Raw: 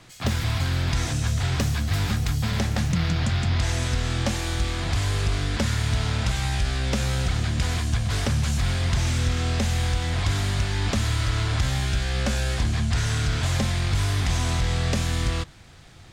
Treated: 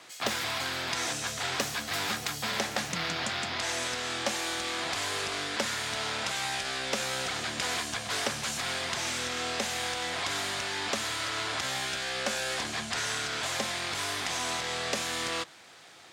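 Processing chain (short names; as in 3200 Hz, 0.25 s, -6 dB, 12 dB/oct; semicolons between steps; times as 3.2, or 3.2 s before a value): HPF 430 Hz 12 dB/oct; vocal rider 0.5 s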